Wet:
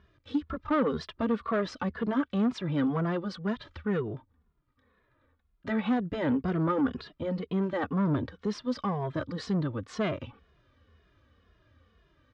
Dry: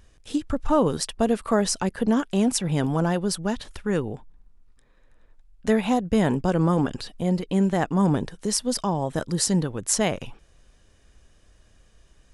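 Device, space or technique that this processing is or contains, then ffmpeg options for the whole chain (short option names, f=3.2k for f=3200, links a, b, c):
barber-pole flanger into a guitar amplifier: -filter_complex "[0:a]asplit=2[a][b];[b]adelay=2.4,afreqshift=-2[c];[a][c]amix=inputs=2:normalize=1,asoftclip=type=tanh:threshold=-21.5dB,highpass=77,equalizer=f=79:t=q:w=4:g=9,equalizer=f=170:t=q:w=4:g=-3,equalizer=f=270:t=q:w=4:g=3,equalizer=f=780:t=q:w=4:g=-6,equalizer=f=1.2k:t=q:w=4:g=6,equalizer=f=2.7k:t=q:w=4:g=-5,lowpass=f=3.7k:w=0.5412,lowpass=f=3.7k:w=1.3066"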